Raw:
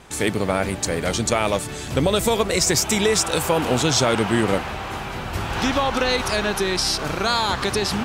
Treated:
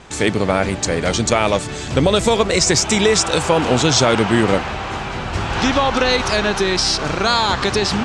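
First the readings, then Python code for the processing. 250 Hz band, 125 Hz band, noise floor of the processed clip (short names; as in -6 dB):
+4.5 dB, +4.5 dB, -27 dBFS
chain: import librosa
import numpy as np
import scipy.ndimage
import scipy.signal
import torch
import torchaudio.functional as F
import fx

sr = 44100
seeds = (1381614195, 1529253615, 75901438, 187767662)

y = scipy.signal.sosfilt(scipy.signal.butter(4, 7900.0, 'lowpass', fs=sr, output='sos'), x)
y = y * librosa.db_to_amplitude(4.5)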